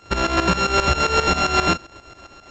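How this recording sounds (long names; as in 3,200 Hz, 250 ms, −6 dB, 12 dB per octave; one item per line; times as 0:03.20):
a buzz of ramps at a fixed pitch in blocks of 32 samples
tremolo saw up 7.5 Hz, depth 80%
G.722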